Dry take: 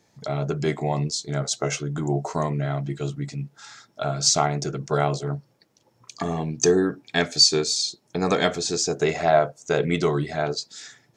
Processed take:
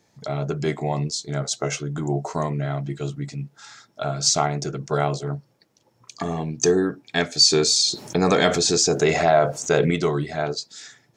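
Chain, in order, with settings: 7.44–9.91 s: level flattener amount 50%

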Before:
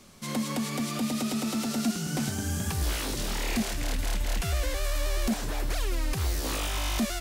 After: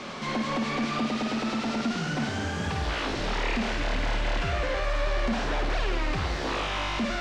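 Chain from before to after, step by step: in parallel at -6 dB: wavefolder -30 dBFS; on the sum: overdrive pedal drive 28 dB, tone 2.7 kHz, clips at -21.5 dBFS; distance through air 140 m; flutter echo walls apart 9 m, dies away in 0.44 s

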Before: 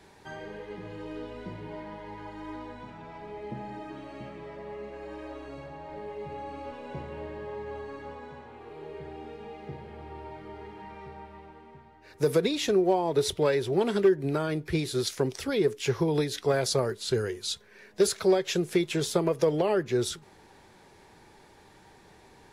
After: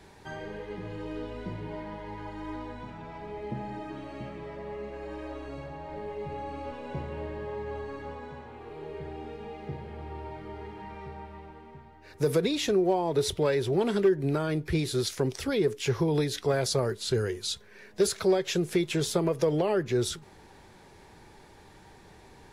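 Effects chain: in parallel at -2 dB: peak limiter -24.5 dBFS, peak gain reduction 11 dB; on the sum: bass shelf 120 Hz +6.5 dB; trim -4 dB

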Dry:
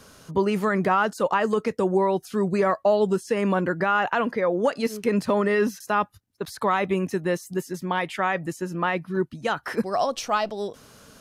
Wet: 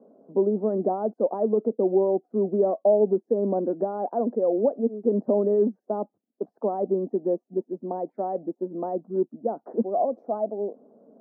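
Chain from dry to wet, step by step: elliptic band-pass 220–710 Hz, stop band 60 dB; trim +1.5 dB

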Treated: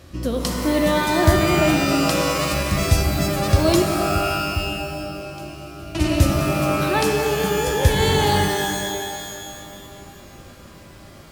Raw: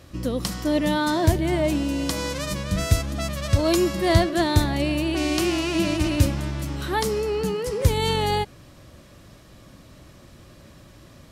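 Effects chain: 3.82–5.95 s: amplifier tone stack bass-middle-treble 10-0-1; pitch-shifted reverb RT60 2.2 s, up +12 st, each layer -2 dB, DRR 4 dB; trim +2 dB

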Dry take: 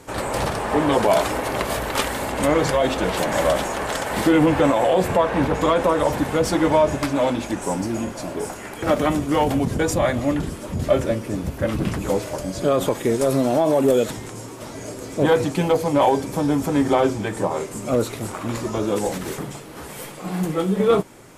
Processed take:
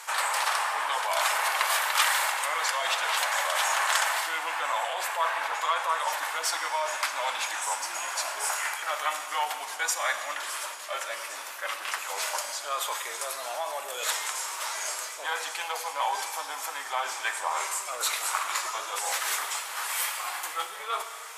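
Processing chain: reverse; compression, threshold -26 dBFS, peak gain reduction 13.5 dB; reverse; high-pass 940 Hz 24 dB/octave; Schroeder reverb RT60 1.8 s, combs from 28 ms, DRR 8.5 dB; trim +8 dB

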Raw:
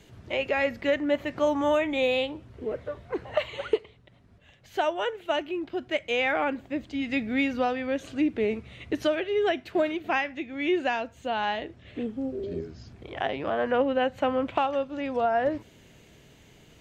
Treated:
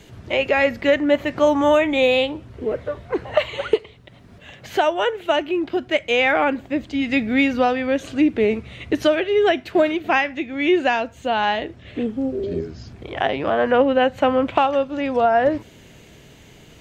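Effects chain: 3.73–5.77 s: three bands compressed up and down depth 40%; trim +8 dB

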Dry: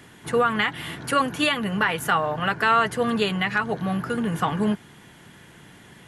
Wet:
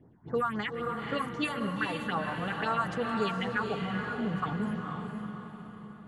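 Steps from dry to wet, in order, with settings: level-controlled noise filter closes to 650 Hz, open at -16.5 dBFS; phase shifter stages 4, 3.8 Hz, lowest notch 390–3100 Hz; echo that smears into a reverb 468 ms, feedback 47%, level -4 dB; trim -7.5 dB

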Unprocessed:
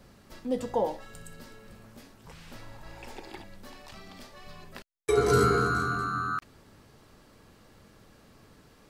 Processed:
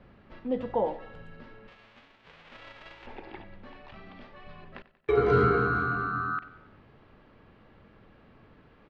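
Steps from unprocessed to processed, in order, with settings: 1.67–3.05 s: formants flattened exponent 0.1; low-pass 3 kHz 24 dB/octave; feedback delay 93 ms, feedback 51%, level -17 dB

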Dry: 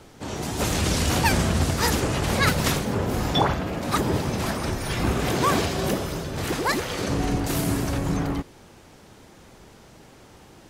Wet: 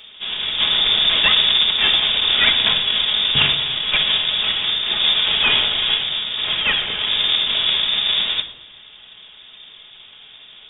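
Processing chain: square wave that keeps the level; frequency inversion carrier 3.6 kHz; reverberation RT60 0.80 s, pre-delay 5 ms, DRR 6 dB

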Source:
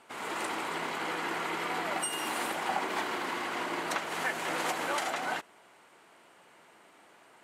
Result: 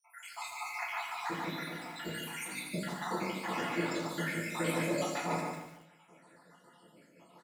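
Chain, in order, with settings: random holes in the spectrogram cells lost 78%; treble shelf 2.6 kHz +3 dB; hum notches 50/100/150/200/250/300 Hz; comb of notches 390 Hz; 1.30–2.98 s: compressor with a negative ratio -45 dBFS, ratio -1; peaking EQ 190 Hz +11 dB 1.6 oct; feedback delay 146 ms, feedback 29%, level -5 dB; simulated room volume 40 m³, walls mixed, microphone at 0.84 m; bit-crushed delay 83 ms, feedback 35%, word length 8-bit, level -9 dB; trim -3.5 dB

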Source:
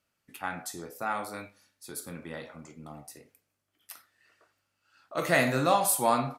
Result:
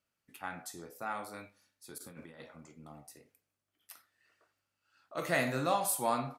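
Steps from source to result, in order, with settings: 1.98–2.40 s: compressor with a negative ratio -43 dBFS, ratio -0.5; trim -6.5 dB

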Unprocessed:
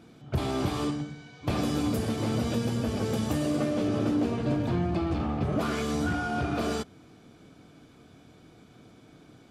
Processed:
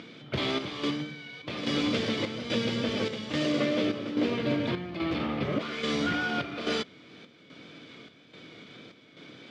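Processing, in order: treble shelf 2.4 kHz +9 dB; upward compressor, threshold -41 dBFS; square tremolo 1.2 Hz, depth 60%, duty 70%; wow and flutter 29 cents; careless resampling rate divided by 3×, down none, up zero stuff; cabinet simulation 160–4700 Hz, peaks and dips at 530 Hz +5 dB, 760 Hz -7 dB, 2.1 kHz +8 dB, 3.3 kHz +5 dB

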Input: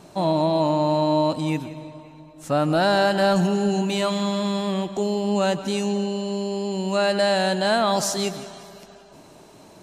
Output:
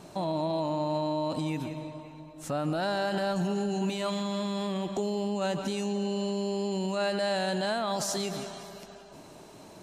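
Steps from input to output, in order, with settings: peak limiter -20.5 dBFS, peak gain reduction 10 dB; trim -1.5 dB

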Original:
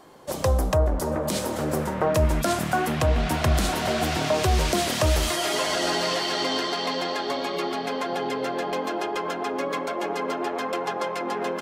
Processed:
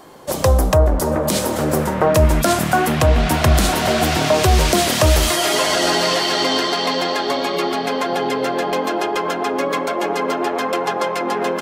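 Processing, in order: treble shelf 12 kHz +5.5 dB; trim +7.5 dB

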